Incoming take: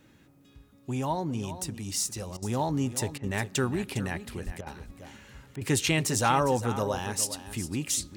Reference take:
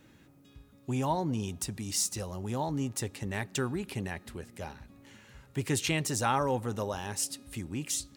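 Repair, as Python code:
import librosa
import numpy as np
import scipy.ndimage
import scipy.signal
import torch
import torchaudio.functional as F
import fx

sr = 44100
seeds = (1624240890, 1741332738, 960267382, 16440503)

y = fx.highpass(x, sr, hz=140.0, slope=24, at=(4.45, 4.57), fade=0.02)
y = fx.fix_interpolate(y, sr, at_s=(2.37, 3.18, 4.61, 5.56), length_ms=53.0)
y = fx.fix_echo_inverse(y, sr, delay_ms=407, level_db=-12.5)
y = fx.fix_level(y, sr, at_s=2.41, step_db=-4.0)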